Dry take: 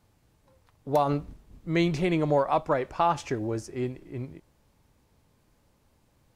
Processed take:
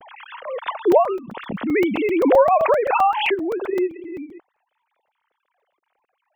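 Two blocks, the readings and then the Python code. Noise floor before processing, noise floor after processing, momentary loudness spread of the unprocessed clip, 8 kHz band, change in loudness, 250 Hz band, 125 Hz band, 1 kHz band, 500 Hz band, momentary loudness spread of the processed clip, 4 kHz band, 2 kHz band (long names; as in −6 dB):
−67 dBFS, −77 dBFS, 14 LU, can't be measured, +8.5 dB, +7.0 dB, −10.5 dB, +8.5 dB, +10.0 dB, 18 LU, +8.0 dB, +10.0 dB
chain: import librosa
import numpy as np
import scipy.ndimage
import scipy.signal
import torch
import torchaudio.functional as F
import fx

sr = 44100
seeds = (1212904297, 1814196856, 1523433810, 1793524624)

y = fx.sine_speech(x, sr)
y = fx.buffer_crackle(y, sr, first_s=0.92, period_s=0.13, block=128, kind='zero')
y = fx.pre_swell(y, sr, db_per_s=37.0)
y = y * librosa.db_to_amplitude(6.5)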